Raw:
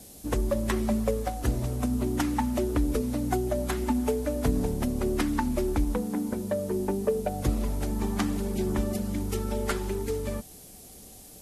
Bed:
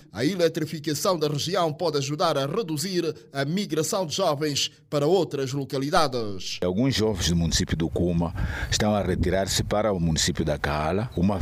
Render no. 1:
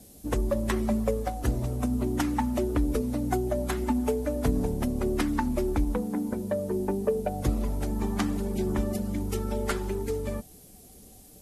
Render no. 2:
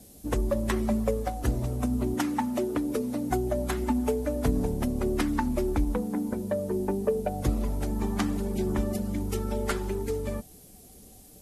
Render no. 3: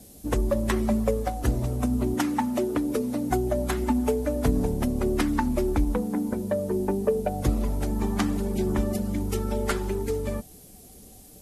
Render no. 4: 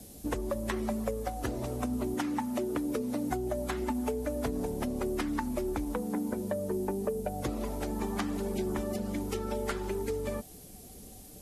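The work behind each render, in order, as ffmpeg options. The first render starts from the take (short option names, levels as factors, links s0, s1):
-af "afftdn=nr=6:nf=-48"
-filter_complex "[0:a]asettb=1/sr,asplit=3[s0][s1][s2];[s0]atrim=end=2.144[s3];[s1]atrim=start=2.14:end=3.31,asetpts=PTS-STARTPTS,afade=t=in:d=0.004:c=qsin,afade=t=out:st=1.166:d=0.004:c=qsin,highpass=160[s4];[s2]atrim=start=3.306[s5];[s3][s4]acrossfade=d=0.004:c1=hsin:c2=qsin[s6];[s6][s5]acrossfade=d=0.004:c1=qsin:c2=hsin"
-af "volume=1.33"
-filter_complex "[0:a]acrossover=split=260|5900[s0][s1][s2];[s0]acompressor=threshold=0.0112:ratio=4[s3];[s1]acompressor=threshold=0.0251:ratio=4[s4];[s2]acompressor=threshold=0.00316:ratio=4[s5];[s3][s4][s5]amix=inputs=3:normalize=0"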